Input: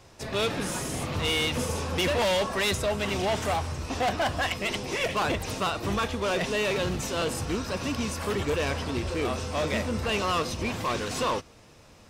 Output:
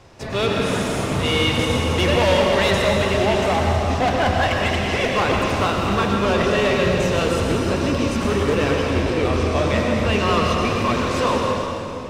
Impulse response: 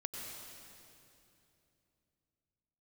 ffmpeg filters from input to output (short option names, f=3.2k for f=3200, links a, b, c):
-filter_complex "[0:a]lowpass=f=3.5k:p=1[a];[1:a]atrim=start_sample=2205,asetrate=41454,aresample=44100[b];[a][b]afir=irnorm=-1:irlink=0,volume=9dB"